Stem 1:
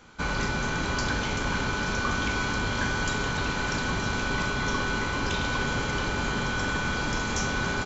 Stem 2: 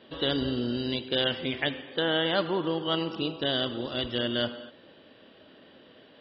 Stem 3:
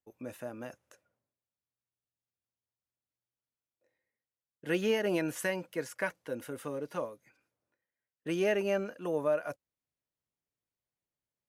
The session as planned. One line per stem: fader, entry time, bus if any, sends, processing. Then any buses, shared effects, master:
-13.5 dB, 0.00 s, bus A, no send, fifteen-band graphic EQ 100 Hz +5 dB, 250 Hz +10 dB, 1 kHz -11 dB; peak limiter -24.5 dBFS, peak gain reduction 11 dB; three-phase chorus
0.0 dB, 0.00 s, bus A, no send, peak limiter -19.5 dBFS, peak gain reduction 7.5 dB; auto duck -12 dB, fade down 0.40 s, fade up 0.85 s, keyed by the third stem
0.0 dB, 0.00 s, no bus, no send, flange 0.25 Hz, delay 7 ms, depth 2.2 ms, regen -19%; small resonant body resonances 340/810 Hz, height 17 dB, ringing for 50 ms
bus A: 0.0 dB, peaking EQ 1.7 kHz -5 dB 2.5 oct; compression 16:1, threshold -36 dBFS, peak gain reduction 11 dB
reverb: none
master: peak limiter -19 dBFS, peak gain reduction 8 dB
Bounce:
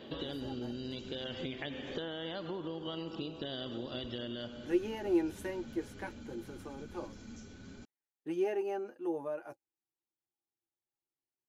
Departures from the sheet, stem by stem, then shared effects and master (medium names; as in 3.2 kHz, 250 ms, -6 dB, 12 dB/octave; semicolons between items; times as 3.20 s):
stem 2 0.0 dB -> +7.0 dB; stem 3 0.0 dB -> -9.0 dB